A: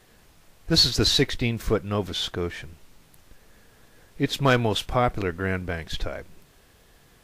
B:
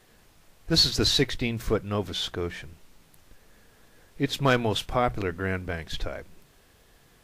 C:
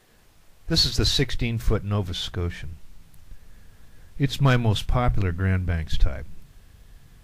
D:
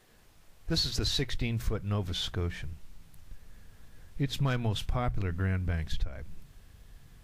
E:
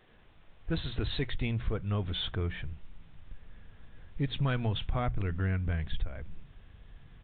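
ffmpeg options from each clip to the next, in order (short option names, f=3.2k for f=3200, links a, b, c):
-af "bandreject=f=60:t=h:w=6,bandreject=f=120:t=h:w=6,bandreject=f=180:t=h:w=6,volume=-2dB"
-af "asubboost=boost=5:cutoff=170"
-af "acompressor=threshold=-22dB:ratio=5,volume=-3.5dB"
-filter_complex "[0:a]asplit=2[a][b];[b]asoftclip=type=tanh:threshold=-31dB,volume=-6dB[c];[a][c]amix=inputs=2:normalize=0,aresample=8000,aresample=44100,volume=-2.5dB"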